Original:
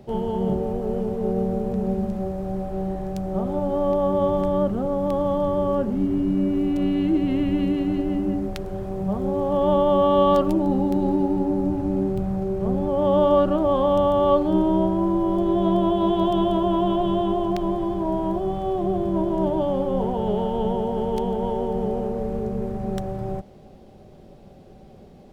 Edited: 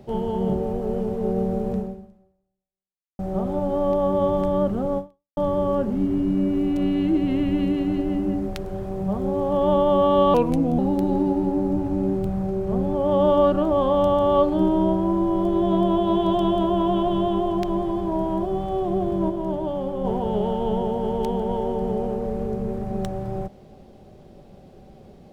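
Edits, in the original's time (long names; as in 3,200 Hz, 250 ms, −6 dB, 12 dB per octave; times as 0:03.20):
0:01.77–0:03.19: fade out exponential
0:04.98–0:05.37: fade out exponential
0:10.34–0:10.72: play speed 85%
0:19.23–0:19.98: clip gain −4 dB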